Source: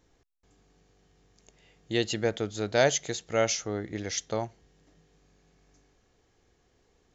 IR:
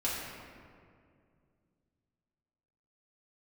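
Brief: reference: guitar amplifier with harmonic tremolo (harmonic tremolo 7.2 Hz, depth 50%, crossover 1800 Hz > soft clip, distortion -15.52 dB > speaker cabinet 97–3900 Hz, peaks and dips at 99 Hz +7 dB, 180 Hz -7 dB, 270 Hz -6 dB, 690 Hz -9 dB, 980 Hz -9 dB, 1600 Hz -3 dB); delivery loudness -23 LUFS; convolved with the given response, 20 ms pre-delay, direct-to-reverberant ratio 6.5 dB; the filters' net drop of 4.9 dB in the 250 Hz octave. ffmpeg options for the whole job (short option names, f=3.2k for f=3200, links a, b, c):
-filter_complex "[0:a]equalizer=f=250:t=o:g=-3,asplit=2[a][b];[1:a]atrim=start_sample=2205,adelay=20[c];[b][c]afir=irnorm=-1:irlink=0,volume=-13dB[d];[a][d]amix=inputs=2:normalize=0,acrossover=split=1800[e][f];[e]aeval=exprs='val(0)*(1-0.5/2+0.5/2*cos(2*PI*7.2*n/s))':c=same[g];[f]aeval=exprs='val(0)*(1-0.5/2-0.5/2*cos(2*PI*7.2*n/s))':c=same[h];[g][h]amix=inputs=2:normalize=0,asoftclip=threshold=-20dB,highpass=97,equalizer=f=99:t=q:w=4:g=7,equalizer=f=180:t=q:w=4:g=-7,equalizer=f=270:t=q:w=4:g=-6,equalizer=f=690:t=q:w=4:g=-9,equalizer=f=980:t=q:w=4:g=-9,equalizer=f=1.6k:t=q:w=4:g=-3,lowpass=f=3.9k:w=0.5412,lowpass=f=3.9k:w=1.3066,volume=13dB"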